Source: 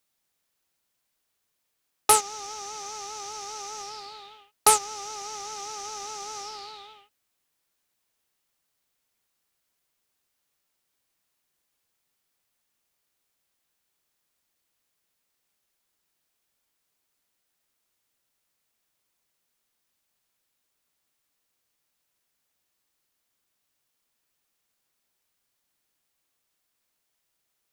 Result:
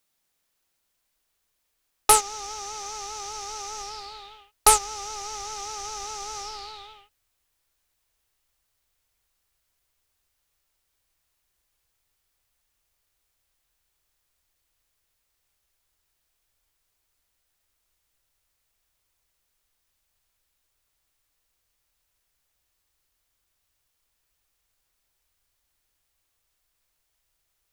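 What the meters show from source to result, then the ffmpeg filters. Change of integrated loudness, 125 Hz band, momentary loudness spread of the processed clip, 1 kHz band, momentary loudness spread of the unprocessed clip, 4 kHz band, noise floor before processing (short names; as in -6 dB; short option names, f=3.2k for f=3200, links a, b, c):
+2.0 dB, +5.5 dB, 20 LU, +1.5 dB, 20 LU, +2.0 dB, -78 dBFS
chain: -af "asubboost=boost=9:cutoff=64,volume=2dB"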